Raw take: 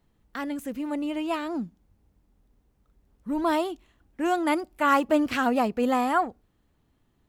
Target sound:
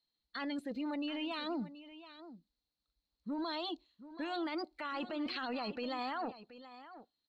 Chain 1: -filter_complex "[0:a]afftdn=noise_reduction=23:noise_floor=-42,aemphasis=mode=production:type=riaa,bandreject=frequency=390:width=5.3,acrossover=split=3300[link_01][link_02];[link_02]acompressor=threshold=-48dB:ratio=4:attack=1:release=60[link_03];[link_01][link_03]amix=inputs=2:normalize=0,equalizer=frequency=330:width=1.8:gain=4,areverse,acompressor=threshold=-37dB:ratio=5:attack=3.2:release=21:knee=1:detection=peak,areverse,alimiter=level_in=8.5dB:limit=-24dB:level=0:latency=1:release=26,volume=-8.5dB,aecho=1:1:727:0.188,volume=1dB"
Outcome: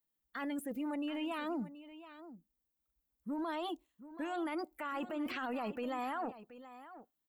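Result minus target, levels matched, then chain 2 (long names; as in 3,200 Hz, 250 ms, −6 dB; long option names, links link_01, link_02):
4,000 Hz band −7.0 dB
-filter_complex "[0:a]afftdn=noise_reduction=23:noise_floor=-42,aemphasis=mode=production:type=riaa,bandreject=frequency=390:width=5.3,acrossover=split=3300[link_01][link_02];[link_02]acompressor=threshold=-48dB:ratio=4:attack=1:release=60[link_03];[link_01][link_03]amix=inputs=2:normalize=0,lowpass=frequency=4200:width_type=q:width=13,equalizer=frequency=330:width=1.8:gain=4,areverse,acompressor=threshold=-37dB:ratio=5:attack=3.2:release=21:knee=1:detection=peak,areverse,alimiter=level_in=8.5dB:limit=-24dB:level=0:latency=1:release=26,volume=-8.5dB,aecho=1:1:727:0.188,volume=1dB"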